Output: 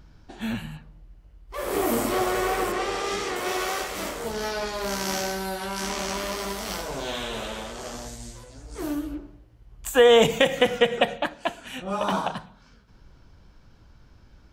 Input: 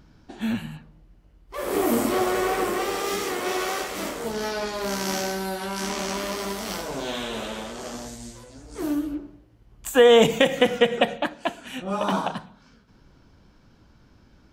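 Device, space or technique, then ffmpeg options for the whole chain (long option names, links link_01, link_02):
low shelf boost with a cut just above: -filter_complex "[0:a]lowshelf=frequency=78:gain=7.5,equalizer=frequency=250:width_type=o:width=1.2:gain=-5,asettb=1/sr,asplit=3[link_01][link_02][link_03];[link_01]atrim=end=2.724[link_04];[link_02]atrim=start=2.72:end=3.36,asetpts=PTS-STARTPTS,afade=type=in:duration=0.004:curve=qsin,afade=type=out:start_time=0.636:duration=0.004:curve=qsin,lowpass=7000[link_05];[link_03]atrim=start=3.356[link_06];[link_04][link_05]acrossfade=duration=0.004:curve1=hsin:curve2=qsin[link_07];[link_07][link_06]acrossfade=duration=0.004:curve1=qsin:curve2=hsin"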